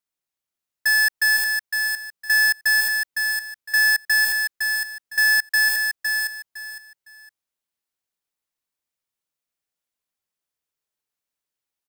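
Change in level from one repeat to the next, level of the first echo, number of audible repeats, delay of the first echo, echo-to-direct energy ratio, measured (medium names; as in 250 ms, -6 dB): -12.0 dB, -5.0 dB, 3, 509 ms, -4.5 dB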